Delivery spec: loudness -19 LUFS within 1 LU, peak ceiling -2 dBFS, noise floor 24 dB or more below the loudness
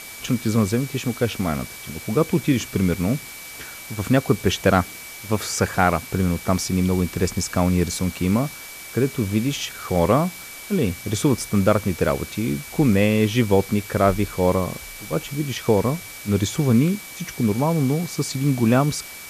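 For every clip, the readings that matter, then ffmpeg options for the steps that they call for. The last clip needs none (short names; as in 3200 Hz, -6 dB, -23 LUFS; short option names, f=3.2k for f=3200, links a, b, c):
steady tone 2300 Hz; tone level -40 dBFS; noise floor -38 dBFS; noise floor target -46 dBFS; loudness -22.0 LUFS; peak -3.0 dBFS; loudness target -19.0 LUFS
-> -af "bandreject=f=2.3k:w=30"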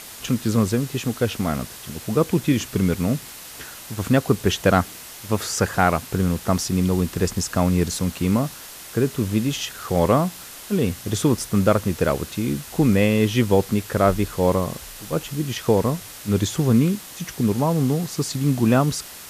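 steady tone none; noise floor -39 dBFS; noise floor target -46 dBFS
-> -af "afftdn=nr=7:nf=-39"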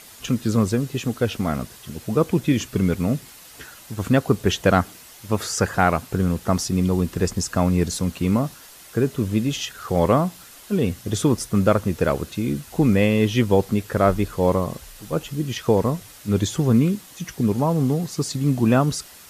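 noise floor -45 dBFS; noise floor target -46 dBFS
-> -af "afftdn=nr=6:nf=-45"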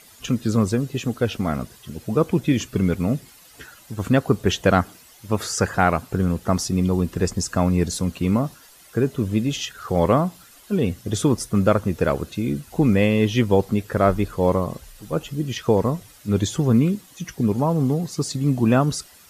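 noise floor -49 dBFS; loudness -22.0 LUFS; peak -3.5 dBFS; loudness target -19.0 LUFS
-> -af "volume=3dB,alimiter=limit=-2dB:level=0:latency=1"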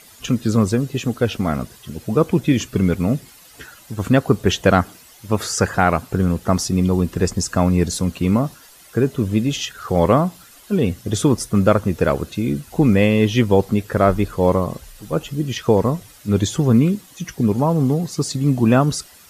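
loudness -19.0 LUFS; peak -2.0 dBFS; noise floor -46 dBFS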